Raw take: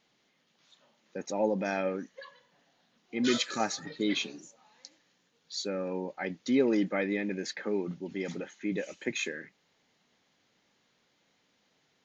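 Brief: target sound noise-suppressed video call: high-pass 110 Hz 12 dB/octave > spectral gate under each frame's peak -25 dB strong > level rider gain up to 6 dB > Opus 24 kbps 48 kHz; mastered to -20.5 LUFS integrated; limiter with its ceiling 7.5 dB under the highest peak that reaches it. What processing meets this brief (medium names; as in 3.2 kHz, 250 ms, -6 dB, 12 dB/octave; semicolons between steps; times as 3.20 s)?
peak limiter -21.5 dBFS; high-pass 110 Hz 12 dB/octave; spectral gate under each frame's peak -25 dB strong; level rider gain up to 6 dB; trim +14 dB; Opus 24 kbps 48 kHz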